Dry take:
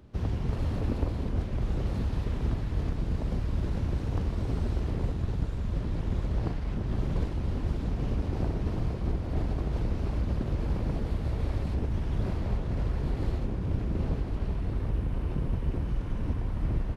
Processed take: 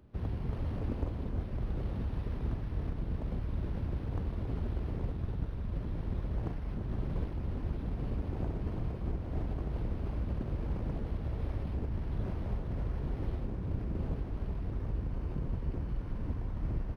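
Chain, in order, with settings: decimation joined by straight lines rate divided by 6×; trim -5.5 dB

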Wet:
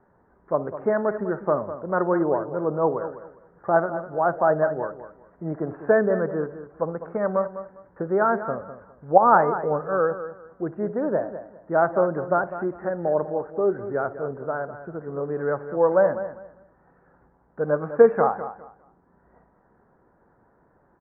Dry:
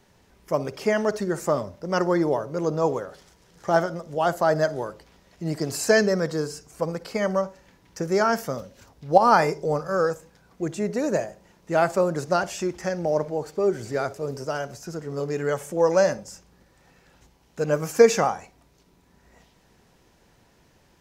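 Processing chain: steep low-pass 1.6 kHz 48 dB/octave; bass shelf 170 Hz -9 dB; on a send: feedback delay 202 ms, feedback 23%, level -12 dB; on the sum: trim +1.5 dB

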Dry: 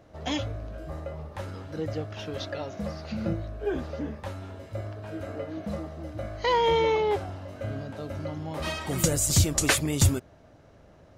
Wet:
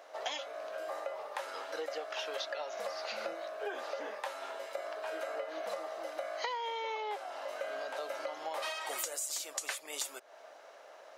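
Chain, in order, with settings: high-pass 570 Hz 24 dB/octave; compression 16:1, threshold -41 dBFS, peak gain reduction 23 dB; trim +6.5 dB

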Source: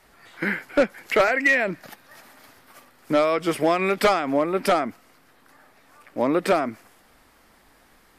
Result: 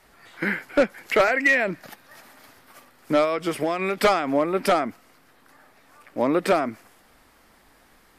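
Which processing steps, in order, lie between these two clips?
3.24–4.02 s: compression 4:1, threshold -21 dBFS, peak gain reduction 5.5 dB

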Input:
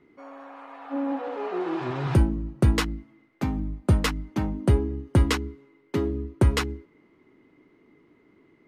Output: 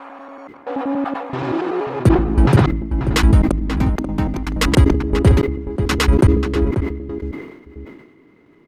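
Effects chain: slices played last to first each 95 ms, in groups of 7; echo from a far wall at 92 m, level -8 dB; decay stretcher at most 59 dB/s; trim +7 dB

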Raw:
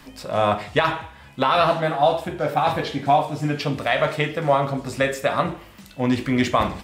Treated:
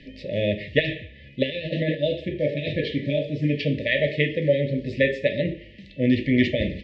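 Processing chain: low-pass 3.7 kHz 24 dB/octave; 1.50–1.95 s: compressor with a negative ratio -23 dBFS, ratio -1; brick-wall FIR band-stop 630–1700 Hz; trim +1 dB

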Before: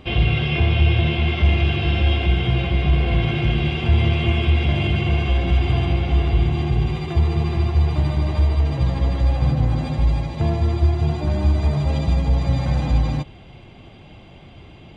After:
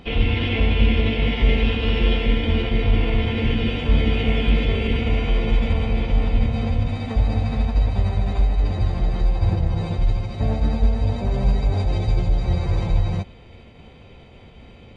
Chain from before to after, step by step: formant-preserving pitch shift -7.5 st

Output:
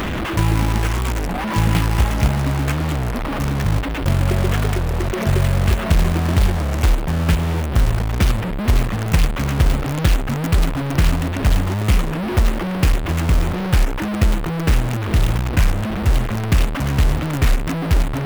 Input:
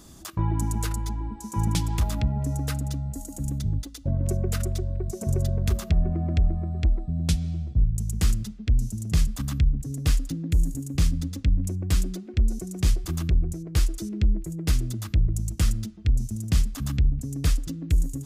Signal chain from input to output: one-bit delta coder 16 kbps, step -25.5 dBFS; compression 4:1, threshold -20 dBFS, peak gain reduction 5 dB; companded quantiser 4-bit; warped record 33 1/3 rpm, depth 250 cents; trim +9 dB

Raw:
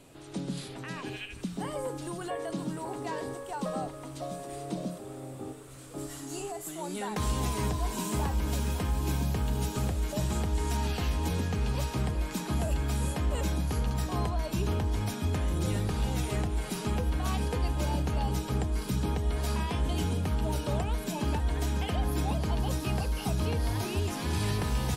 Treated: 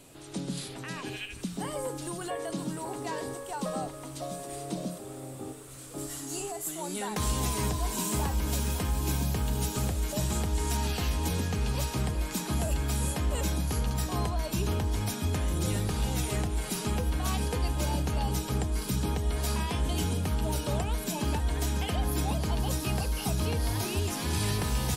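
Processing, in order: treble shelf 4.4 kHz +7.5 dB

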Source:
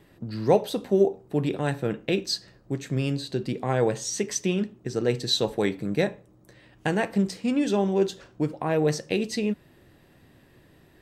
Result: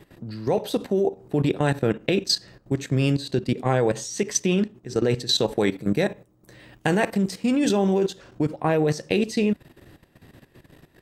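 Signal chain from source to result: 5.67–8.04 s: treble shelf 11 kHz +9 dB; level held to a coarse grid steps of 14 dB; trim +8 dB

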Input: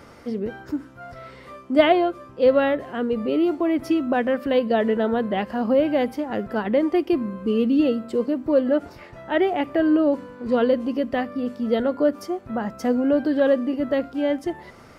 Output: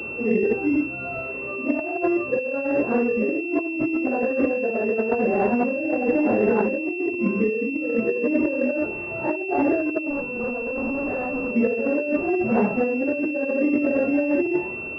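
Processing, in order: phase randomisation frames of 200 ms; high-pass 56 Hz; peaking EQ 380 Hz +11 dB 0.66 oct; compressor with a negative ratio -23 dBFS, ratio -1; 10.10–11.54 s: valve stage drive 24 dB, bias 0.35; class-D stage that switches slowly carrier 2.7 kHz

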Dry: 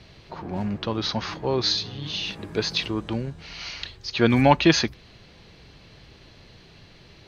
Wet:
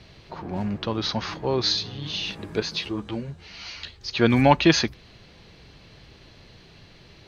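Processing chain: 2.60–4.01 s: three-phase chorus

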